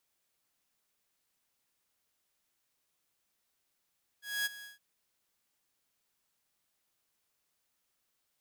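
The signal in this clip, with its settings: ADSR saw 1.66 kHz, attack 237 ms, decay 22 ms, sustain -16.5 dB, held 0.42 s, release 145 ms -26.5 dBFS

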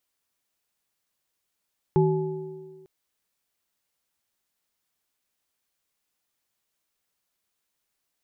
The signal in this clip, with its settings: sine partials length 0.90 s, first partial 158 Hz, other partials 379/853 Hz, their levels 0/-8.5 dB, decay 1.36 s, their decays 1.78/1.11 s, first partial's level -18 dB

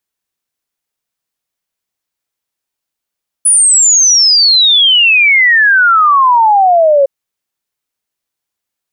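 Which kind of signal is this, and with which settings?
log sweep 10 kHz -> 540 Hz 3.61 s -4.5 dBFS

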